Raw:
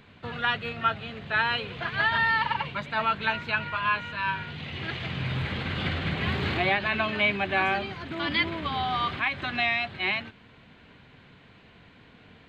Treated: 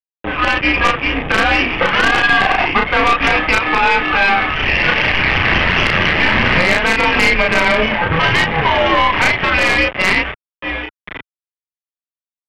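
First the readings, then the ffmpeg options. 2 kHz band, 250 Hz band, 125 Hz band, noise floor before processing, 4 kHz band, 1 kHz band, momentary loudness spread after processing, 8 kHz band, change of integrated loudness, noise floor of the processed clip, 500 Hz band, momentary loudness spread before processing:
+14.5 dB, +13.5 dB, +10.0 dB, -54 dBFS, +13.5 dB, +13.0 dB, 6 LU, n/a, +14.0 dB, under -85 dBFS, +15.5 dB, 8 LU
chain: -filter_complex "[0:a]tiltshelf=f=1.3k:g=-4,asplit=2[a][b];[b]aecho=0:1:1029:0.075[c];[a][c]amix=inputs=2:normalize=0,dynaudnorm=f=160:g=7:m=8dB,afftdn=nr=30:nf=-29,acompressor=threshold=-30dB:ratio=2,aresample=8000,acrusher=bits=4:dc=4:mix=0:aa=0.000001,aresample=44100,highpass=f=190:t=q:w=0.5412,highpass=f=190:t=q:w=1.307,lowpass=f=3k:t=q:w=0.5176,lowpass=f=3k:t=q:w=0.7071,lowpass=f=3k:t=q:w=1.932,afreqshift=-170,bandreject=f=1.4k:w=10,asplit=2[d][e];[e]adelay=33,volume=-2.5dB[f];[d][f]amix=inputs=2:normalize=0,aeval=exprs='(tanh(12.6*val(0)+0.65)-tanh(0.65))/12.6':c=same,alimiter=level_in=27dB:limit=-1dB:release=50:level=0:latency=1,volume=-1dB"

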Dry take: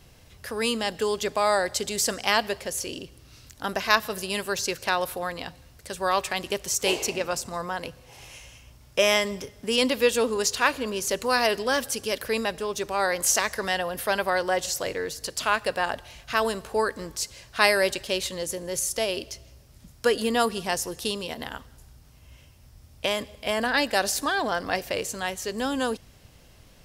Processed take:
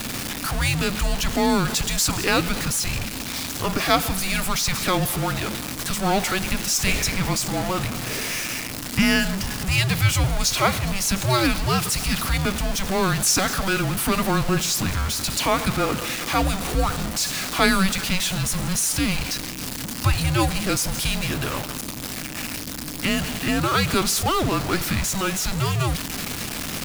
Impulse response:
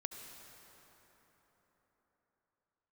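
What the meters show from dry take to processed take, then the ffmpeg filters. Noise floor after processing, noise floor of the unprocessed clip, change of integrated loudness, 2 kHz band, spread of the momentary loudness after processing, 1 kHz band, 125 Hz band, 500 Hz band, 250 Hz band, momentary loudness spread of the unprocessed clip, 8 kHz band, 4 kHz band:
-32 dBFS, -53 dBFS, +3.5 dB, +2.0 dB, 8 LU, +2.0 dB, +19.0 dB, -2.0 dB, +9.0 dB, 11 LU, +6.0 dB, +4.5 dB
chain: -af "aeval=exprs='val(0)+0.5*0.0841*sgn(val(0))':c=same,highpass=150,afreqshift=-380"

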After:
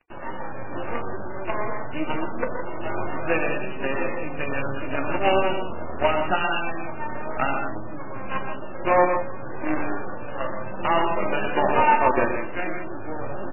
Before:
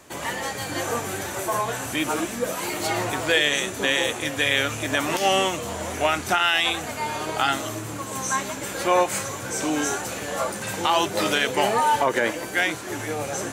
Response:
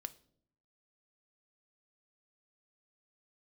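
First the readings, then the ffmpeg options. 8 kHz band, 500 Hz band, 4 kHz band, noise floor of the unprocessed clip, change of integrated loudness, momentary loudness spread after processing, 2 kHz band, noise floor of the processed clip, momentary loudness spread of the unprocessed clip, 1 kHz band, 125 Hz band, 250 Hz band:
under -40 dB, +0.5 dB, -13.5 dB, -33 dBFS, -2.0 dB, 14 LU, -4.5 dB, -29 dBFS, 9 LU, 0.0 dB, -1.0 dB, -0.5 dB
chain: -filter_complex "[0:a]equalizer=f=2k:t=o:w=0.59:g=-13,acrusher=bits=4:dc=4:mix=0:aa=0.000001,aecho=1:1:122.4|166.2:0.447|0.355,flanger=delay=4.7:depth=8.4:regen=-72:speed=0.27:shape=sinusoidal[a];[1:a]atrim=start_sample=2205[b];[a][b]afir=irnorm=-1:irlink=0,acontrast=56,aresample=8000,aresample=44100,volume=3dB" -ar 11025 -c:a libmp3lame -b:a 8k

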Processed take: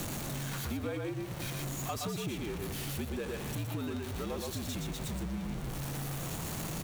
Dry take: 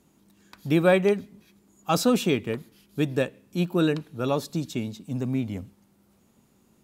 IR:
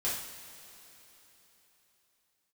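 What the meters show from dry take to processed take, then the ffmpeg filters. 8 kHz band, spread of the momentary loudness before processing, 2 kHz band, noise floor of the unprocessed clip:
-0.5 dB, 13 LU, -9.5 dB, -63 dBFS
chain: -af "aeval=exprs='val(0)+0.5*0.075*sgn(val(0))':c=same,aecho=1:1:119:0.668,afreqshift=-62,bandreject=f=5k:w=17,acompressor=threshold=-27dB:ratio=6,volume=-7dB"

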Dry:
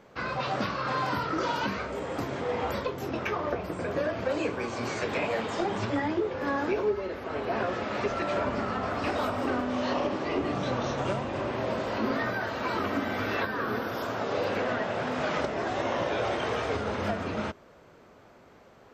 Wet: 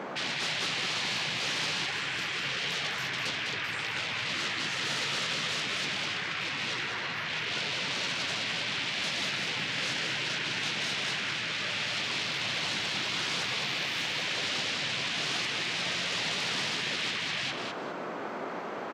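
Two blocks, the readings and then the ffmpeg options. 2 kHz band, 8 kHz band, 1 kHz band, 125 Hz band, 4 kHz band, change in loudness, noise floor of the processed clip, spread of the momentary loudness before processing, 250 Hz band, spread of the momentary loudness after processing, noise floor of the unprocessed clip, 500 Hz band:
+4.0 dB, +11.5 dB, -7.0 dB, -6.5 dB, +12.0 dB, 0.0 dB, -37 dBFS, 4 LU, -10.5 dB, 3 LU, -55 dBFS, -12.5 dB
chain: -filter_complex "[0:a]afftfilt=real='re*lt(hypot(re,im),0.1)':imag='im*lt(hypot(re,im),0.1)':win_size=1024:overlap=0.75,lowshelf=f=220:g=-9,aeval=exprs='0.0944*sin(PI/2*6.31*val(0)/0.0944)':c=same,areverse,acompressor=mode=upward:threshold=-42dB:ratio=2.5,areverse,aemphasis=mode=reproduction:type=75fm,acrossover=split=7600[a][b];[b]acompressor=threshold=-54dB:ratio=4:attack=1:release=60[c];[a][c]amix=inputs=2:normalize=0,highpass=f=160:w=0.5412,highpass=f=160:w=1.3066,afftfilt=real='re*lt(hypot(re,im),0.0891)':imag='im*lt(hypot(re,im),0.0891)':win_size=1024:overlap=0.75,asplit=2[d][e];[e]aecho=0:1:203|406|609:0.531|0.127|0.0306[f];[d][f]amix=inputs=2:normalize=0"

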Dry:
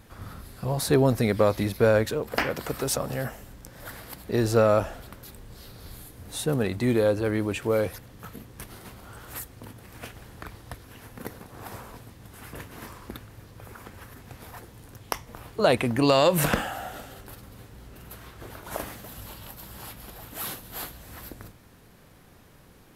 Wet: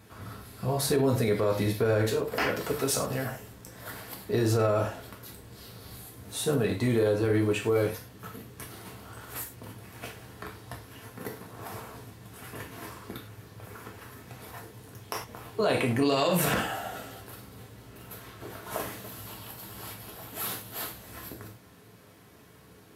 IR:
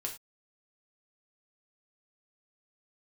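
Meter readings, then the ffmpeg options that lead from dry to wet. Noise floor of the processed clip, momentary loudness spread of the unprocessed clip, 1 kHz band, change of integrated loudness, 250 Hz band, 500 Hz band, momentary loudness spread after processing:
-54 dBFS, 23 LU, -3.0 dB, -3.5 dB, -2.5 dB, -3.0 dB, 20 LU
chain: -filter_complex "[0:a]highpass=82[a];[1:a]atrim=start_sample=2205[b];[a][b]afir=irnorm=-1:irlink=0,alimiter=limit=-16dB:level=0:latency=1:release=48"

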